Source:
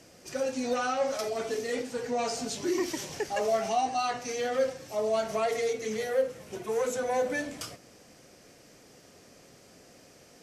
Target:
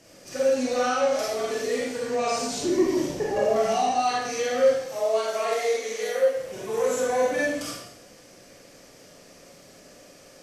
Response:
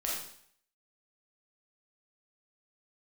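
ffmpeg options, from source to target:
-filter_complex "[0:a]asettb=1/sr,asplit=3[link_01][link_02][link_03];[link_01]atrim=end=2.634[link_04];[link_02]atrim=start=2.63:end=3.56,asetpts=PTS-STARTPTS,afade=type=in:duration=0.004:curve=qsin,afade=type=out:start_time=0.926:duration=0.004:curve=qsin,tiltshelf=frequency=830:gain=7.5[link_05];[link_03]atrim=start=3.556[link_06];[link_04][link_05]acrossfade=duration=0.004:curve1=hsin:curve2=qsin[link_07];[link_07][link_06]acrossfade=duration=0.004:curve1=qsin:curve2=hsin,asettb=1/sr,asplit=3[link_08][link_09][link_10];[link_08]atrim=end=4.854[link_11];[link_09]atrim=start=4.85:end=6.36,asetpts=PTS-STARTPTS,afade=type=in:duration=0.004:curve=qsin,afade=type=out:start_time=1.506:duration=0.004:curve=qsin,highpass=400[link_12];[link_10]atrim=start=6.356[link_13];[link_11][link_12]acrossfade=duration=0.004:curve1=hsin:curve2=qsin[link_14];[link_14][link_13]acrossfade=duration=0.004:curve1=qsin:curve2=hsin[link_15];[1:a]atrim=start_sample=2205,asetrate=39690,aresample=44100[link_16];[link_15][link_16]afir=irnorm=-1:irlink=0"

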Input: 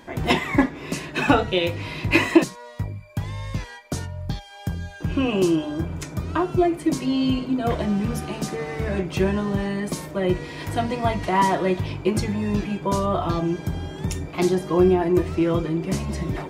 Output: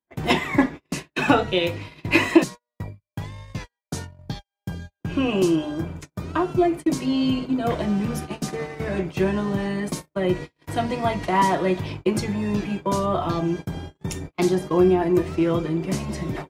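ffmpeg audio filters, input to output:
ffmpeg -i in.wav -filter_complex "[0:a]agate=range=-47dB:threshold=-29dB:ratio=16:detection=peak,acrossover=split=110[link_01][link_02];[link_01]asoftclip=type=hard:threshold=-38.5dB[link_03];[link_03][link_02]amix=inputs=2:normalize=0" out.wav

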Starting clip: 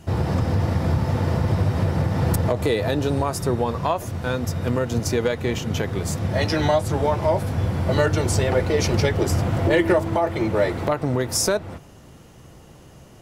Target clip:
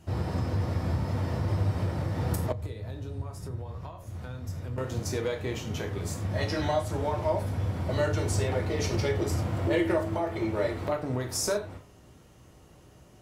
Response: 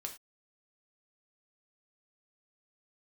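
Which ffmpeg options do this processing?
-filter_complex "[1:a]atrim=start_sample=2205[link_01];[0:a][link_01]afir=irnorm=-1:irlink=0,asettb=1/sr,asplit=3[link_02][link_03][link_04];[link_02]atrim=end=2.524[link_05];[link_03]atrim=start=2.52:end=4.78,asetpts=PTS-STARTPTS,afade=type=in:duration=0.004:curve=qsin,afade=type=out:start_time=2.256:duration=0.004:curve=qsin,acrossover=split=140[link_06][link_07];[link_07]acompressor=threshold=-37dB:ratio=6[link_08];[link_06][link_08]amix=inputs=2:normalize=0[link_09];[link_04]atrim=start=4.776[link_10];[link_05][link_09]acrossfade=duration=0.004:curve1=hsin:curve2=qsin[link_11];[link_11][link_10]acrossfade=duration=0.004:curve1=qsin:curve2=hsin,volume=-6dB"

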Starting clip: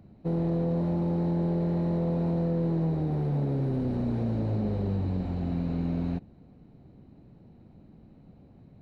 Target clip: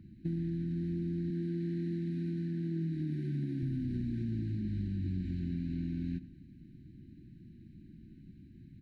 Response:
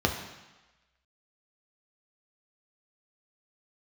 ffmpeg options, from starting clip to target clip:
-filter_complex "[0:a]asettb=1/sr,asplit=3[link_01][link_02][link_03];[link_01]atrim=end=1.304[link_04];[link_02]atrim=start=1.3:end=3.63,asetpts=PTS-STARTPTS,afade=type=in:duration=0.004:curve=qsin,afade=type=out:start_time=2.326:duration=0.004:curve=qsin,highpass=170[link_05];[link_03]atrim=start=3.626[link_06];[link_04][link_05]acrossfade=duration=0.004:curve1=hsin:curve2=qsin[link_07];[link_07][link_06]acrossfade=duration=0.004:curve1=qsin:curve2=hsin,afftfilt=real='re*(1-between(b*sr/4096,370,1500))':imag='im*(1-between(b*sr/4096,370,1500))':win_size=4096:overlap=0.75,acompressor=threshold=-32dB:ratio=6,aecho=1:1:97|194|291:0.141|0.0579|0.0237"

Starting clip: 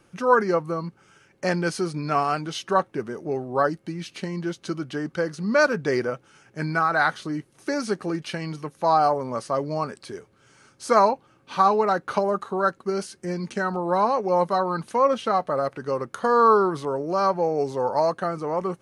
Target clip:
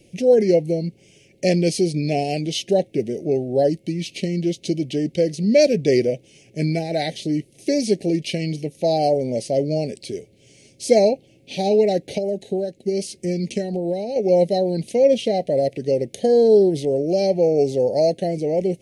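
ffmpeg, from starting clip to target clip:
ffmpeg -i in.wav -filter_complex "[0:a]asettb=1/sr,asplit=3[link_01][link_02][link_03];[link_01]atrim=end=12.124[link_04];[link_02]atrim=start=12.12:end=14.16,asetpts=PTS-STARTPTS,afade=type=in:duration=0.004:curve=qsin,afade=type=out:start_time=2.036:duration=0.004:curve=qsin,acompressor=threshold=-25dB:ratio=6[link_05];[link_03]atrim=start=14.156[link_06];[link_04][link_05]acrossfade=duration=0.004:curve1=hsin:curve2=qsin[link_07];[link_07][link_06]acrossfade=duration=0.004:curve1=qsin:curve2=hsin,asuperstop=centerf=1200:order=8:qfactor=0.8,volume=7dB" out.wav

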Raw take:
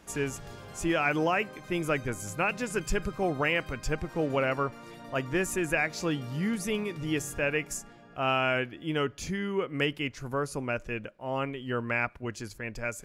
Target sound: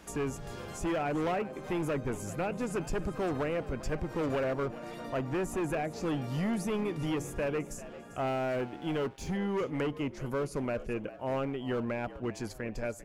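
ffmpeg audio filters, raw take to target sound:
ffmpeg -i in.wav -filter_complex "[0:a]equalizer=frequency=110:width_type=o:width=0.4:gain=-4.5,acrossover=split=880[link_01][link_02];[link_01]asoftclip=type=hard:threshold=-32dB[link_03];[link_02]acompressor=threshold=-47dB:ratio=5[link_04];[link_03][link_04]amix=inputs=2:normalize=0,asplit=5[link_05][link_06][link_07][link_08][link_09];[link_06]adelay=396,afreqshift=74,volume=-16dB[link_10];[link_07]adelay=792,afreqshift=148,volume=-23.7dB[link_11];[link_08]adelay=1188,afreqshift=222,volume=-31.5dB[link_12];[link_09]adelay=1584,afreqshift=296,volume=-39.2dB[link_13];[link_05][link_10][link_11][link_12][link_13]amix=inputs=5:normalize=0,asettb=1/sr,asplit=3[link_14][link_15][link_16];[link_14]atrim=end=8.274[link_17];[link_15]atrim=start=8.27:end=9.37,asetpts=PTS-STARTPTS,afade=type=in:duration=0.004:curve=qsin,afade=type=out:start_time=1.096:duration=0.004:curve=qsin,aeval=exprs='sgn(val(0))*max(abs(val(0))-0.00133,0)':channel_layout=same[link_18];[link_16]atrim=start=9.366[link_19];[link_17][link_18]acrossfade=duration=0.004:curve1=hsin:curve2=qsin[link_20];[link_20][link_19]acrossfade=duration=0.004:curve1=qsin:curve2=hsin,volume=3dB" out.wav

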